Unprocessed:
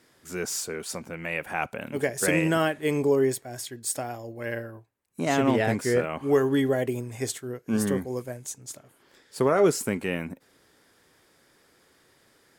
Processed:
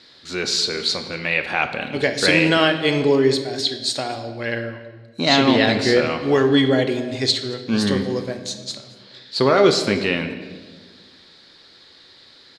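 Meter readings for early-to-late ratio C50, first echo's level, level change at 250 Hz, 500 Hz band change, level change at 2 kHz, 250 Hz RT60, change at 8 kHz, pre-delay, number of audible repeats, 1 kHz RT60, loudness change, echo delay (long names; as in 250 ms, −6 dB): 9.5 dB, −21.5 dB, +7.0 dB, +6.0 dB, +10.0 dB, 2.1 s, +1.0 dB, 3 ms, 1, 1.2 s, +7.5 dB, 228 ms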